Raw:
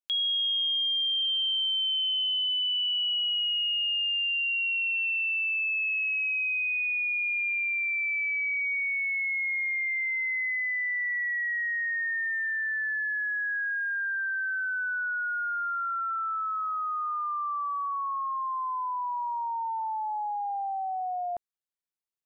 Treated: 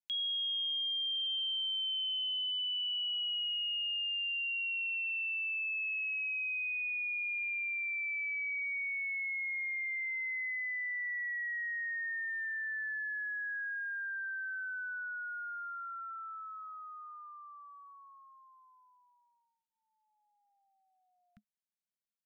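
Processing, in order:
inverse Chebyshev band-stop filter 330–940 Hz, stop band 40 dB
hollow resonant body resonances 210/700 Hz, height 16 dB, ringing for 85 ms
level −7.5 dB

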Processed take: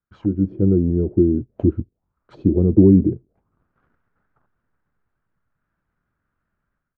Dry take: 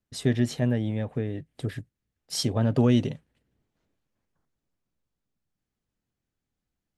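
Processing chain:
automatic gain control gain up to 14.5 dB
pitch shifter −4 semitones
in parallel at −12 dB: log-companded quantiser 4 bits
on the sum: envelope-controlled low-pass 340–1,500 Hz down, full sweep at −18 dBFS
level −6 dB

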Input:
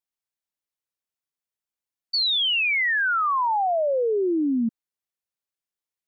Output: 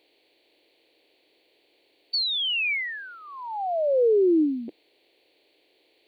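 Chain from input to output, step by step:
compressor on every frequency bin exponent 0.6
drawn EQ curve 130 Hz 0 dB, 210 Hz −14 dB, 310 Hz +8 dB, 480 Hz +8 dB, 790 Hz −2 dB, 1,300 Hz −19 dB, 2,300 Hz +2 dB, 3,800 Hz 0 dB, 5,700 Hz +8 dB, 9,300 Hz +13 dB
level −5.5 dB

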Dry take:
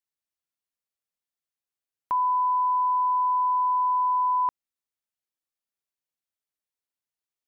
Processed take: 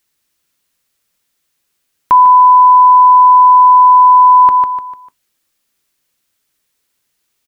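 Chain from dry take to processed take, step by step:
parametric band 740 Hz −5.5 dB 1.1 octaves
repeating echo 149 ms, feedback 40%, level −11 dB
on a send at −17 dB: convolution reverb RT60 0.15 s, pre-delay 3 ms
on the sum: boost into a limiter +25 dB
level −1 dB

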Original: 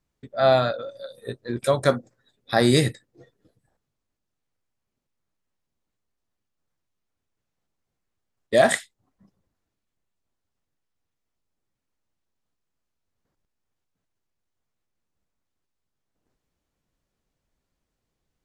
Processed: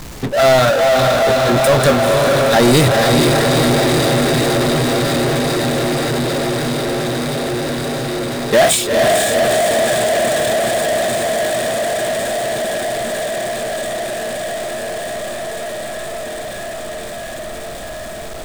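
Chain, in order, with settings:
healed spectral selection 0:08.66–0:08.87, 210–2,200 Hz
feedback delay with all-pass diffusion 471 ms, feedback 75%, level −6 dB
power curve on the samples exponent 0.35

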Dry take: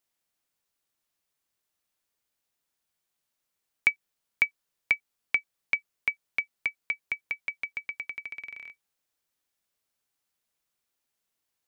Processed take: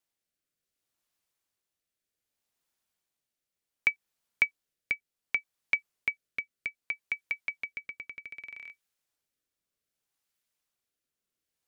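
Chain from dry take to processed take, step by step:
rotating-speaker cabinet horn 0.65 Hz

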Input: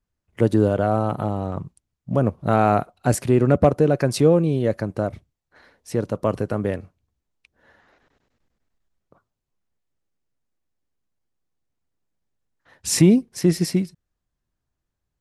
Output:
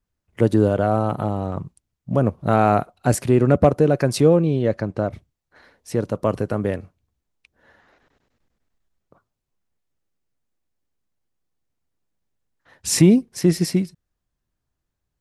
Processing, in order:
0:04.36–0:05.12: low-pass filter 5,800 Hz 12 dB per octave
level +1 dB

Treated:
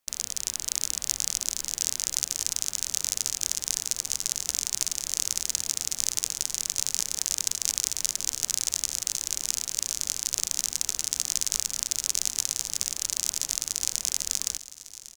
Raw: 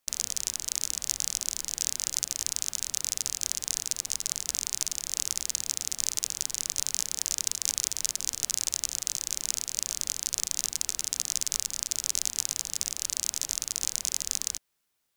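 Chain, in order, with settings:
automatic gain control
repeating echo 1,103 ms, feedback 52%, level −16 dB
level −1 dB

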